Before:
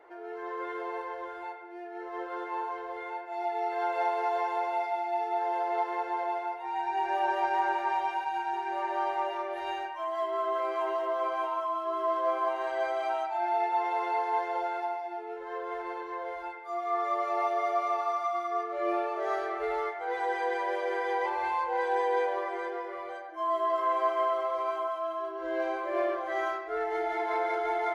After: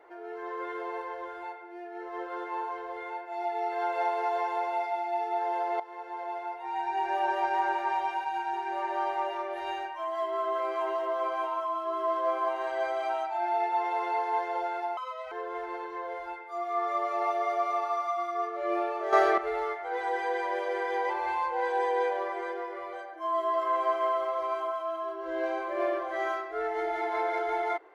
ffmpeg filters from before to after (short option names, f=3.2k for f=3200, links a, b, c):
-filter_complex "[0:a]asplit=6[a][b][c][d][e][f];[a]atrim=end=5.8,asetpts=PTS-STARTPTS,afade=t=out:st=5.796:d=0.004:c=hsin:silence=0.188365[g];[b]atrim=start=5.8:end=14.974,asetpts=PTS-STARTPTS,afade=t=in:d=0.94:silence=0.188365[h];[c]atrim=start=14.97:end=15.48,asetpts=PTS-STARTPTS,asetrate=64827,aresample=44100[i];[d]atrim=start=15.476:end=19.292[j];[e]atrim=start=19.288:end=19.542,asetpts=PTS-STARTPTS,volume=9.5dB[k];[f]atrim=start=19.538[l];[g][h]concat=n=2:v=0:a=1[m];[m][i]acrossfade=d=0.004:c1=hsin:c2=hsin[n];[n][j]acrossfade=d=0.004:c1=hsin:c2=hsin[o];[o][k]acrossfade=d=0.004:c1=hsin:c2=hsin[p];[p][l]acrossfade=d=0.004:c1=hsin:c2=hsin"